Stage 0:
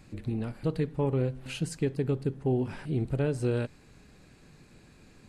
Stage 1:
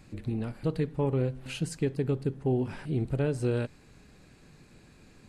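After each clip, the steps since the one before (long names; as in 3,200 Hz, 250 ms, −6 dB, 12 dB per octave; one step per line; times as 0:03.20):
no processing that can be heard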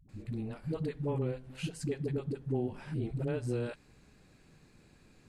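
all-pass dispersion highs, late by 91 ms, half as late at 300 Hz
level −5.5 dB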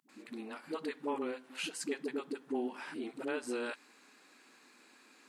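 elliptic high-pass filter 250 Hz, stop band 80 dB
low shelf with overshoot 790 Hz −6.5 dB, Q 1.5
level +6.5 dB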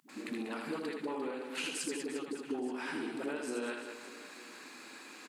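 downward compressor, threshold −46 dBFS, peak gain reduction 14 dB
on a send: reverse bouncing-ball delay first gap 80 ms, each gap 1.4×, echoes 5
on the sum: level +9 dB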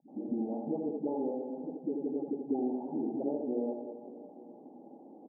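Chebyshev low-pass with heavy ripple 840 Hz, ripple 3 dB
level +6.5 dB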